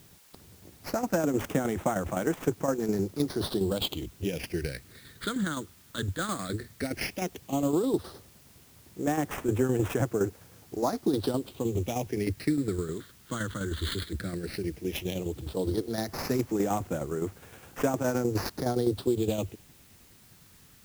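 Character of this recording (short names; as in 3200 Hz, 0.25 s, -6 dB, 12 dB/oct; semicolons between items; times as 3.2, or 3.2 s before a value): aliases and images of a low sample rate 7500 Hz, jitter 20%; phasing stages 8, 0.13 Hz, lowest notch 720–4300 Hz; tremolo saw down 9.7 Hz, depth 60%; a quantiser's noise floor 10-bit, dither triangular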